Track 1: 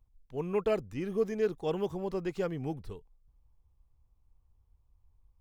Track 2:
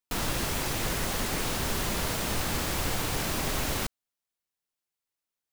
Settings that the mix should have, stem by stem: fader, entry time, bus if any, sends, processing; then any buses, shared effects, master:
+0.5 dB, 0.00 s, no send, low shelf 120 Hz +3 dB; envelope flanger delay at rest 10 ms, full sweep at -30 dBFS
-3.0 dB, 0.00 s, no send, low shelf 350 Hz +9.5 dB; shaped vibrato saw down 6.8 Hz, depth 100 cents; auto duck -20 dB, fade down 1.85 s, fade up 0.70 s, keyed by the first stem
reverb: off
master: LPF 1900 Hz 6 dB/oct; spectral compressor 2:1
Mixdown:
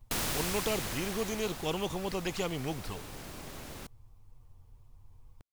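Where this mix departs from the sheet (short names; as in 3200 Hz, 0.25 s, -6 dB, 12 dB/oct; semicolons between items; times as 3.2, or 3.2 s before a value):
stem 2 -3.0 dB -> -12.5 dB; master: missing LPF 1900 Hz 6 dB/oct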